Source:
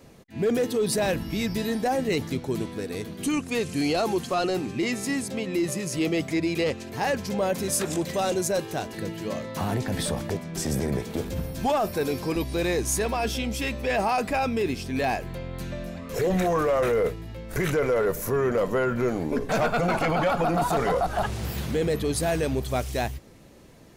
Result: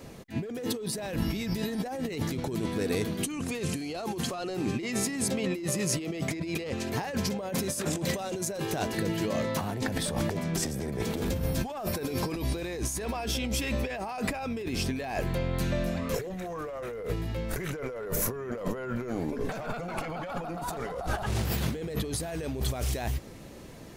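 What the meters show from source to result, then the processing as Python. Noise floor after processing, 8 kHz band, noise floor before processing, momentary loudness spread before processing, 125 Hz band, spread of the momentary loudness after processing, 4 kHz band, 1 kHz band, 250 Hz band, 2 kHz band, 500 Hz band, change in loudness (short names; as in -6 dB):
-38 dBFS, -1.5 dB, -40 dBFS, 8 LU, -1.5 dB, 5 LU, -2.5 dB, -9.0 dB, -4.0 dB, -6.0 dB, -8.0 dB, -5.0 dB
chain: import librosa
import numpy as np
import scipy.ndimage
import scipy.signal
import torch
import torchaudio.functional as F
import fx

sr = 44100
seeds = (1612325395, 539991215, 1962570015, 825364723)

y = fx.over_compress(x, sr, threshold_db=-32.0, ratio=-1.0)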